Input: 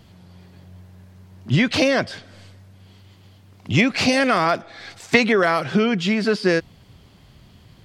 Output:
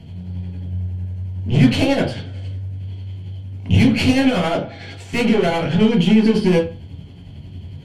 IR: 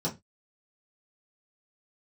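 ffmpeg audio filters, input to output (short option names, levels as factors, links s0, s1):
-filter_complex "[0:a]aeval=exprs='(tanh(17.8*val(0)+0.7)-tanh(0.7))/17.8':c=same,tremolo=f=11:d=0.55[s0];[1:a]atrim=start_sample=2205,asetrate=24696,aresample=44100[s1];[s0][s1]afir=irnorm=-1:irlink=0"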